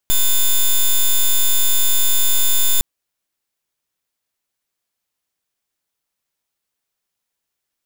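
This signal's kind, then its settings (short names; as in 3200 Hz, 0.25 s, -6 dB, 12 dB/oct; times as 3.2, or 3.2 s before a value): pulse 3550 Hz, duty 7% -13 dBFS 2.71 s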